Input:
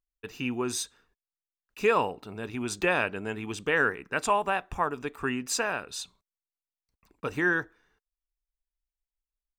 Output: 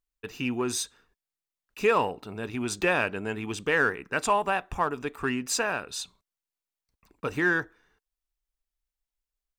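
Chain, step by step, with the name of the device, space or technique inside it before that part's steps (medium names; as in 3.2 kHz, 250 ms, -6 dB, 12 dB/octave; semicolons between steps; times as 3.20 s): parallel distortion (in parallel at -11.5 dB: hard clipper -28.5 dBFS, distortion -6 dB)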